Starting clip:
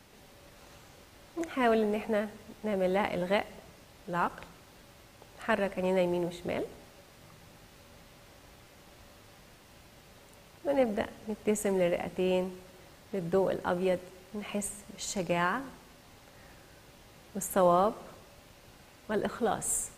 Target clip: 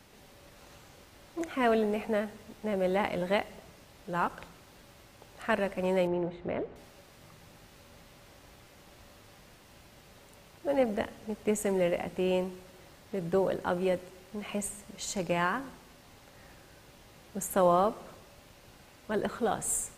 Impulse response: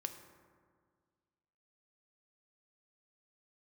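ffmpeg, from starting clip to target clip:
-filter_complex "[0:a]asettb=1/sr,asplit=3[link_01][link_02][link_03];[link_01]atrim=end=6.074[link_04];[link_02]atrim=start=6.07:end=6.76,asetpts=PTS-STARTPTS,afade=type=in:duration=0.004:curve=qsin,afade=type=out:start_time=0.686:duration=0.004:curve=qsin,lowpass=2000[link_05];[link_03]atrim=start=6.756[link_06];[link_04][link_05]acrossfade=duration=0.004:curve1=hsin:curve2=qsin[link_07];[link_07][link_06]acrossfade=duration=0.004:curve1=qsin:curve2=hsin"

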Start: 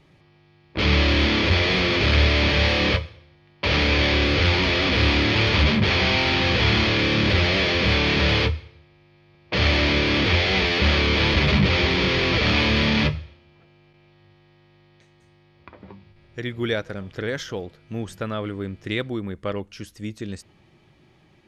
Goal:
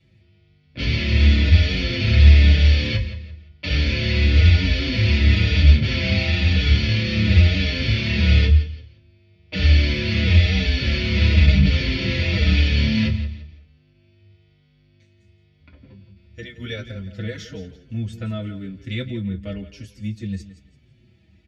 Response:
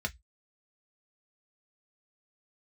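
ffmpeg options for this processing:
-filter_complex "[0:a]equalizer=frequency=930:width_type=o:width=1.3:gain=-14,bandreject=frequency=1900:width=29,aecho=1:1:169|338|507:0.211|0.0634|0.019[link_01];[1:a]atrim=start_sample=2205[link_02];[link_01][link_02]afir=irnorm=-1:irlink=0,asplit=2[link_03][link_04];[link_04]adelay=5.4,afreqshift=-1[link_05];[link_03][link_05]amix=inputs=2:normalize=1,volume=-2.5dB"

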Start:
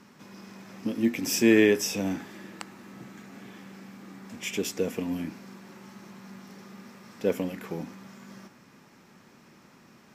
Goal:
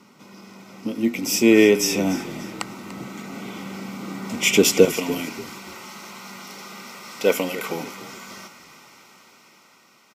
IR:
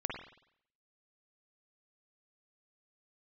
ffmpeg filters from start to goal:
-filter_complex "[0:a]asetnsamples=nb_out_samples=441:pad=0,asendcmd='4.85 highpass f 1200',highpass=frequency=160:poles=1,dynaudnorm=framelen=460:gausssize=9:maxgain=13dB,asuperstop=centerf=1700:order=20:qfactor=6.4,asplit=4[link_01][link_02][link_03][link_04];[link_02]adelay=292,afreqshift=-34,volume=-15.5dB[link_05];[link_03]adelay=584,afreqshift=-68,volume=-24.1dB[link_06];[link_04]adelay=876,afreqshift=-102,volume=-32.8dB[link_07];[link_01][link_05][link_06][link_07]amix=inputs=4:normalize=0,volume=3.5dB"

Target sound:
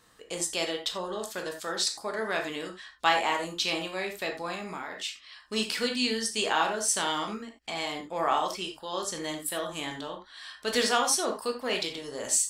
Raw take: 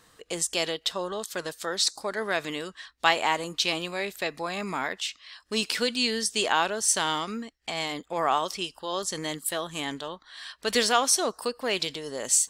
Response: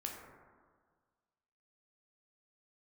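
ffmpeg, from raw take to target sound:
-filter_complex "[1:a]atrim=start_sample=2205,atrim=end_sample=4410[link_01];[0:a][link_01]afir=irnorm=-1:irlink=0,asettb=1/sr,asplit=3[link_02][link_03][link_04];[link_02]atrim=end=4.544[link_05];[link_03]atrim=start=4.54:end=5.04,asetpts=PTS-STARTPTS,afade=type=in:duration=0.004:curve=qsin,afade=type=out:start_time=0.496:duration=0.004:curve=qsin,acompressor=threshold=-34dB:ratio=6[link_06];[link_04]atrim=start=5.036[link_07];[link_05][link_06]acrossfade=duration=0.004:curve1=hsin:curve2=qsin[link_08];[link_08][link_07]acrossfade=duration=0.004:curve1=qsin:curve2=hsin"

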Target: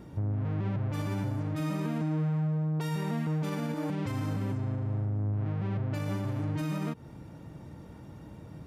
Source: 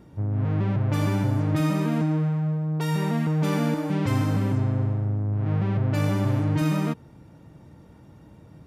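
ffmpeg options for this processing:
ffmpeg -i in.wav -af "acompressor=threshold=-29dB:ratio=6,alimiter=level_in=3dB:limit=-24dB:level=0:latency=1:release=69,volume=-3dB,volume=2.5dB" out.wav

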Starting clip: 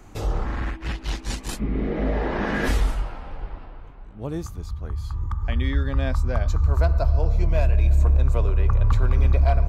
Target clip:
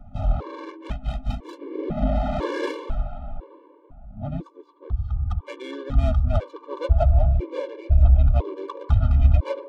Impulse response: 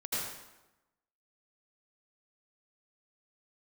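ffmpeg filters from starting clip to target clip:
-filter_complex "[0:a]adynamicsmooth=sensitivity=2.5:basefreq=930,asplit=4[link_01][link_02][link_03][link_04];[link_02]asetrate=35002,aresample=44100,atempo=1.25992,volume=-9dB[link_05];[link_03]asetrate=37084,aresample=44100,atempo=1.18921,volume=-8dB[link_06];[link_04]asetrate=55563,aresample=44100,atempo=0.793701,volume=-14dB[link_07];[link_01][link_05][link_06][link_07]amix=inputs=4:normalize=0,superequalizer=8b=1.58:11b=0.447:13b=1.58,afftfilt=real='re*gt(sin(2*PI*1*pts/sr)*(1-2*mod(floor(b*sr/1024/300),2)),0)':imag='im*gt(sin(2*PI*1*pts/sr)*(1-2*mod(floor(b*sr/1024/300),2)),0)':win_size=1024:overlap=0.75,volume=1.5dB"

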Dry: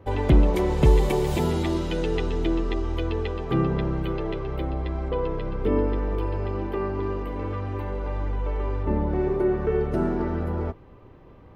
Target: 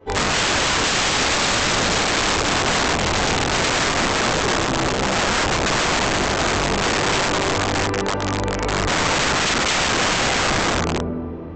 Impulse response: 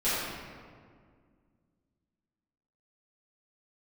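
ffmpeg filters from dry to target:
-filter_complex "[0:a]highpass=frequency=110:poles=1[link_01];[1:a]atrim=start_sample=2205[link_02];[link_01][link_02]afir=irnorm=-1:irlink=0,aresample=16000,aeval=exprs='(mod(5.31*val(0)+1,2)-1)/5.31':channel_layout=same,aresample=44100"

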